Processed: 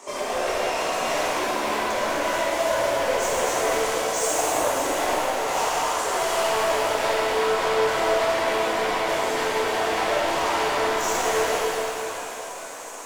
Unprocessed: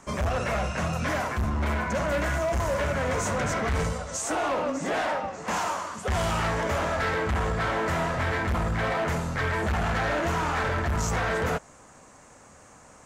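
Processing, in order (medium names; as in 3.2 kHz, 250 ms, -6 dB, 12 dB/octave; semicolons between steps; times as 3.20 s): high-pass 340 Hz 24 dB/octave; peaking EQ 1.5 kHz -12 dB 0.56 oct; in parallel at +0.5 dB: compression, threshold -40 dBFS, peak gain reduction 14.5 dB; on the sum: flange 0.63 Hz, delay 1.7 ms, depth 3.9 ms, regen -86%; saturation -35 dBFS, distortion -9 dB; pitch-shifted reverb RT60 3.2 s, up +7 st, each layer -8 dB, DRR -7 dB; trim +6.5 dB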